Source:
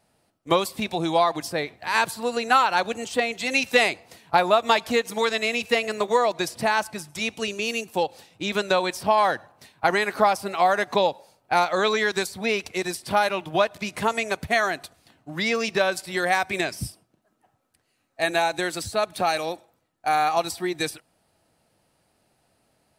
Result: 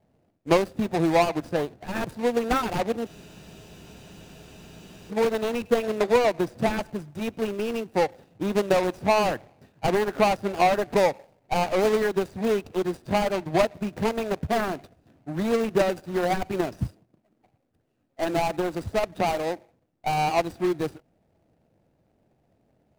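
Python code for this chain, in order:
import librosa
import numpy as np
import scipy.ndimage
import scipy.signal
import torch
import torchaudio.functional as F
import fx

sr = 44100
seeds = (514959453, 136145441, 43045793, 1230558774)

y = scipy.ndimage.median_filter(x, 41, mode='constant')
y = fx.spec_freeze(y, sr, seeds[0], at_s=3.08, hold_s=2.01)
y = F.gain(torch.from_numpy(y), 4.5).numpy()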